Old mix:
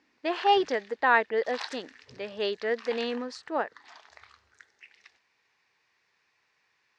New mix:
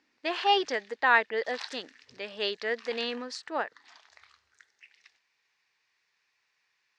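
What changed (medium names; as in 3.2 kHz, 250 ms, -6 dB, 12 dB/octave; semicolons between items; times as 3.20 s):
background -5.5 dB; master: add tilt shelf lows -5 dB, about 1.3 kHz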